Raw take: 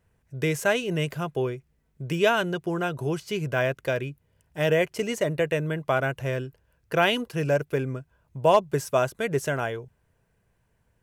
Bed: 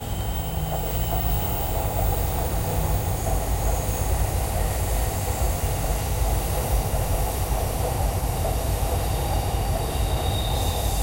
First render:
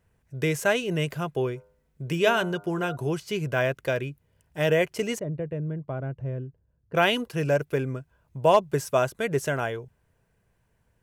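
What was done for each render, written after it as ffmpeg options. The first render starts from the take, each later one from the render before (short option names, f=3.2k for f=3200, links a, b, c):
-filter_complex "[0:a]asplit=3[a][b][c];[a]afade=t=out:st=1.55:d=0.02[d];[b]bandreject=f=101.4:t=h:w=4,bandreject=f=202.8:t=h:w=4,bandreject=f=304.2:t=h:w=4,bandreject=f=405.6:t=h:w=4,bandreject=f=507:t=h:w=4,bandreject=f=608.4:t=h:w=4,bandreject=f=709.8:t=h:w=4,bandreject=f=811.2:t=h:w=4,bandreject=f=912.6:t=h:w=4,bandreject=f=1.014k:t=h:w=4,bandreject=f=1.1154k:t=h:w=4,bandreject=f=1.2168k:t=h:w=4,bandreject=f=1.3182k:t=h:w=4,bandreject=f=1.4196k:t=h:w=4,bandreject=f=1.521k:t=h:w=4,afade=t=in:st=1.55:d=0.02,afade=t=out:st=2.95:d=0.02[e];[c]afade=t=in:st=2.95:d=0.02[f];[d][e][f]amix=inputs=3:normalize=0,asettb=1/sr,asplit=3[g][h][i];[g]atrim=end=5.194[j];[h]atrim=start=5.19:end=6.95,asetpts=PTS-STARTPTS,afade=t=in:d=0.004:c=qsin,afade=t=out:st=1.756:d=0.004:c=qsin,bandpass=f=110:t=q:w=0.56[k];[i]atrim=start=6.946[l];[j][k]acrossfade=d=0.004:c1=hsin:c2=qsin[m];[m][l]acrossfade=d=0.004:c1=qsin:c2=hsin"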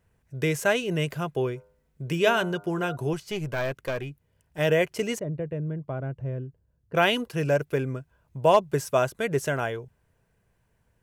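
-filter_complex "[0:a]asettb=1/sr,asplit=3[a][b][c];[a]atrim=end=3.134[d];[b]atrim=start=3.13:end=4.59,asetpts=PTS-STARTPTS,afade=t=in:d=0.004:c=qsin,afade=t=out:st=1.456:d=0.004:c=qsin,aeval=exprs='(tanh(10*val(0)+0.5)-tanh(0.5))/10':c=same[e];[c]atrim=start=4.586[f];[d][e]acrossfade=d=0.004:c1=hsin:c2=qsin[g];[g][f]acrossfade=d=0.004:c1=qsin:c2=hsin"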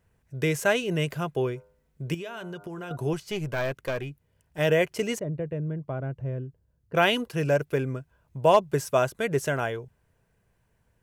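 -filter_complex "[0:a]asettb=1/sr,asplit=3[a][b][c];[a]atrim=end=2.144[d];[b]atrim=start=2.14:end=2.91,asetpts=PTS-STARTPTS,afade=t=in:d=0.004:c=qsin,afade=t=out:st=0.766:d=0.004:c=qsin,acompressor=threshold=-33dB:ratio=16:attack=3.2:release=140:knee=1:detection=peak[e];[c]atrim=start=2.906[f];[d][e]acrossfade=d=0.004:c1=hsin:c2=qsin[g];[g][f]acrossfade=d=0.004:c1=qsin:c2=hsin"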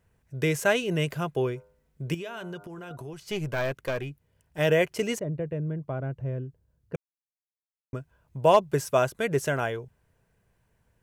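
-filter_complex "[0:a]asettb=1/sr,asplit=3[a][b][c];[a]atrim=end=2.644[d];[b]atrim=start=2.64:end=3.26,asetpts=PTS-STARTPTS,afade=t=in:d=0.004:c=qsin,afade=t=out:st=0.616:d=0.004:c=qsin,acompressor=threshold=-37dB:ratio=5:attack=3.2:release=140:knee=1:detection=peak[e];[c]atrim=start=3.256[f];[d][e]acrossfade=d=0.004:c1=hsin:c2=qsin[g];[g][f]acrossfade=d=0.004:c1=qsin:c2=hsin,asplit=3[h][i][j];[h]atrim=end=6.96,asetpts=PTS-STARTPTS,afade=t=out:st=6.956:d=0.004:c=hsin[k];[i]atrim=start=6.96:end=7.93,asetpts=PTS-STARTPTS,volume=0[l];[j]atrim=start=7.93,asetpts=PTS-STARTPTS,afade=t=in:d=0.004:c=hsin[m];[k][l][m]concat=n=3:v=0:a=1"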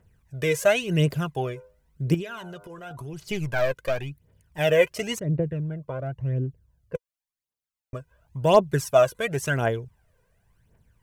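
-af "aphaser=in_gain=1:out_gain=1:delay=2.1:decay=0.64:speed=0.93:type=triangular"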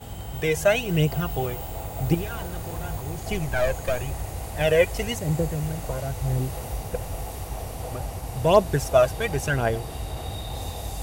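-filter_complex "[1:a]volume=-8.5dB[a];[0:a][a]amix=inputs=2:normalize=0"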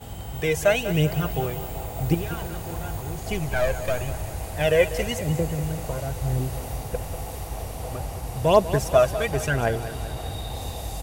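-af "aecho=1:1:195|390|585|780|975|1170:0.224|0.123|0.0677|0.0372|0.0205|0.0113"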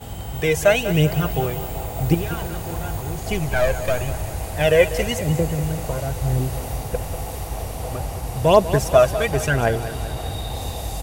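-af "volume=4dB,alimiter=limit=-2dB:level=0:latency=1"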